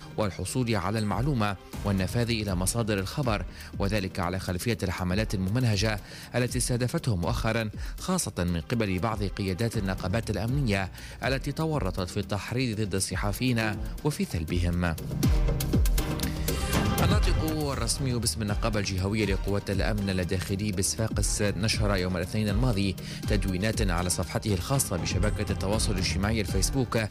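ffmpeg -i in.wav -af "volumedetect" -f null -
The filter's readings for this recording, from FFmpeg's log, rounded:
mean_volume: -27.4 dB
max_volume: -13.0 dB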